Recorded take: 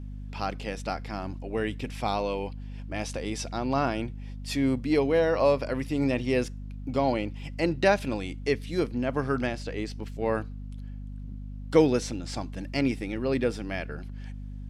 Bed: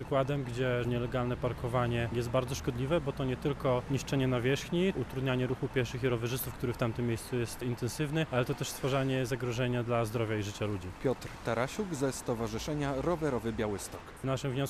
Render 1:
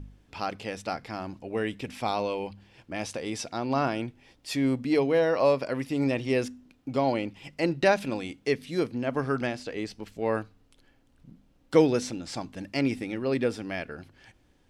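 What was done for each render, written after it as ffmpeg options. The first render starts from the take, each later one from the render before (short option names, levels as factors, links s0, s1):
-af "bandreject=f=50:t=h:w=4,bandreject=f=100:t=h:w=4,bandreject=f=150:t=h:w=4,bandreject=f=200:t=h:w=4,bandreject=f=250:t=h:w=4"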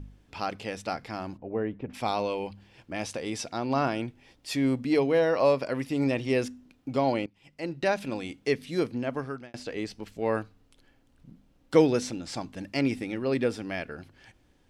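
-filter_complex "[0:a]asplit=3[s0][s1][s2];[s0]afade=t=out:st=1.36:d=0.02[s3];[s1]lowpass=1100,afade=t=in:st=1.36:d=0.02,afade=t=out:st=1.93:d=0.02[s4];[s2]afade=t=in:st=1.93:d=0.02[s5];[s3][s4][s5]amix=inputs=3:normalize=0,asplit=3[s6][s7][s8];[s6]atrim=end=7.26,asetpts=PTS-STARTPTS,afade=t=out:st=7.256:d=0.004:c=hsin:silence=0.0841395[s9];[s7]atrim=start=7.26:end=9.54,asetpts=PTS-STARTPTS,afade=t=in:d=1.09:silence=0.0841395,afade=t=out:st=1.71:d=0.57[s10];[s8]atrim=start=9.54,asetpts=PTS-STARTPTS,afade=t=in:d=0.004:c=hsin[s11];[s9][s10][s11]concat=n=3:v=0:a=1"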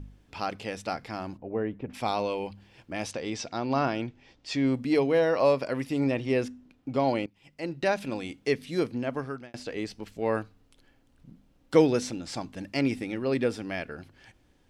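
-filter_complex "[0:a]asettb=1/sr,asplit=3[s0][s1][s2];[s0]atrim=end=3.114[s3];[s1]atrim=start=3.11:end=4.74,asetpts=PTS-STARTPTS,afade=t=in:d=0.004:c=qsin,afade=t=out:st=1.626:d=0.004:c=qsin,lowpass=f=6800:w=0.5412,lowpass=f=6800:w=1.3066[s4];[s2]atrim=start=4.736[s5];[s3][s4]acrossfade=d=0.004:c1=hsin:c2=qsin[s6];[s6][s5]acrossfade=d=0.004:c1=qsin:c2=hsin,asettb=1/sr,asplit=3[s7][s8][s9];[s7]atrim=end=6.004[s10];[s8]atrim=start=6:end=7,asetpts=PTS-STARTPTS,afade=t=in:d=0.004:c=qsin,afade=t=out:st=0.996:d=0.004:c=qsin,highshelf=f=4400:g=-7.5[s11];[s9]atrim=start=6.996[s12];[s10][s11]acrossfade=d=0.004:c1=hsin:c2=qsin[s13];[s13][s12]acrossfade=d=0.004:c1=qsin:c2=hsin"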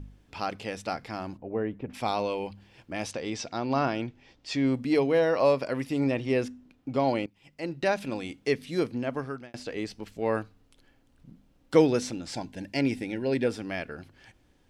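-filter_complex "[0:a]asettb=1/sr,asplit=3[s0][s1][s2];[s0]atrim=end=12.334[s3];[s1]atrim=start=12.33:end=13.47,asetpts=PTS-STARTPTS,afade=t=in:d=0.004:c=qsin,afade=t=out:st=1.136:d=0.004:c=qsin,asuperstop=centerf=1200:order=12:qfactor=3.9[s4];[s2]atrim=start=13.466[s5];[s3][s4]acrossfade=d=0.004:c1=hsin:c2=qsin[s6];[s6][s5]acrossfade=d=0.004:c1=qsin:c2=hsin"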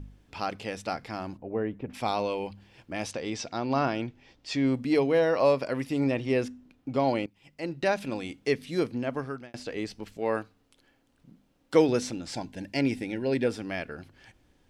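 -filter_complex "[0:a]asettb=1/sr,asplit=3[s0][s1][s2];[s0]atrim=end=10.174[s3];[s1]atrim=start=10.17:end=11.89,asetpts=PTS-STARTPTS,afade=t=in:d=0.004:c=qsin,afade=t=out:st=1.716:d=0.004:c=qsin,lowshelf=f=120:g=-11.5[s4];[s2]atrim=start=11.886[s5];[s3][s4]acrossfade=d=0.004:c1=hsin:c2=qsin[s6];[s6][s5]acrossfade=d=0.004:c1=qsin:c2=hsin"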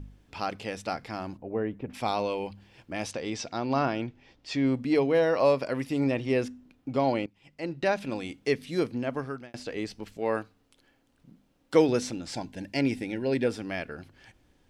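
-filter_complex "[0:a]asettb=1/sr,asplit=3[s0][s1][s2];[s0]atrim=end=3.824[s3];[s1]atrim=start=3.82:end=5.15,asetpts=PTS-STARTPTS,afade=t=in:d=0.004:c=qsin,afade=t=out:st=1.326:d=0.004:c=qsin,highshelf=f=5500:g=-5[s4];[s2]atrim=start=5.146[s5];[s3][s4]acrossfade=d=0.004:c1=hsin:c2=qsin[s6];[s6][s5]acrossfade=d=0.004:c1=qsin:c2=hsin,asettb=1/sr,asplit=3[s7][s8][s9];[s7]atrim=end=7.064[s10];[s8]atrim=start=7.06:end=8.09,asetpts=PTS-STARTPTS,afade=t=in:d=0.004:c=qsin,afade=t=out:st=1.026:d=0.004:c=qsin,highshelf=f=8300:g=-7.5[s11];[s9]atrim=start=8.086[s12];[s10][s11]acrossfade=d=0.004:c1=hsin:c2=qsin[s13];[s13][s12]acrossfade=d=0.004:c1=qsin:c2=hsin"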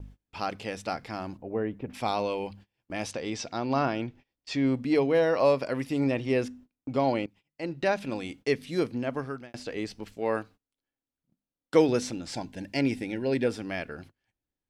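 -af "agate=range=0.0447:threshold=0.00398:ratio=16:detection=peak"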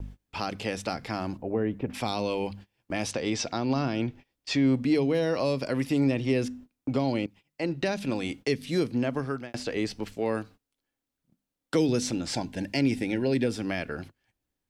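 -filter_complex "[0:a]acrossover=split=330|3000[s0][s1][s2];[s1]acompressor=threshold=0.02:ratio=6[s3];[s0][s3][s2]amix=inputs=3:normalize=0,asplit=2[s4][s5];[s5]alimiter=level_in=1.06:limit=0.0631:level=0:latency=1:release=188,volume=0.944,volume=0.944[s6];[s4][s6]amix=inputs=2:normalize=0"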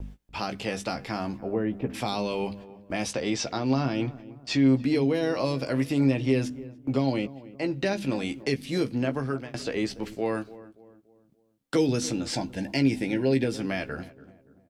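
-filter_complex "[0:a]asplit=2[s0][s1];[s1]adelay=15,volume=0.422[s2];[s0][s2]amix=inputs=2:normalize=0,asplit=2[s3][s4];[s4]adelay=288,lowpass=f=1100:p=1,volume=0.141,asplit=2[s5][s6];[s6]adelay=288,lowpass=f=1100:p=1,volume=0.45,asplit=2[s7][s8];[s8]adelay=288,lowpass=f=1100:p=1,volume=0.45,asplit=2[s9][s10];[s10]adelay=288,lowpass=f=1100:p=1,volume=0.45[s11];[s3][s5][s7][s9][s11]amix=inputs=5:normalize=0"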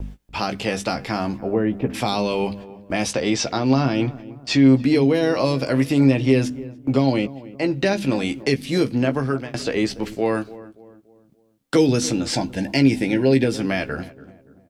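-af "volume=2.24"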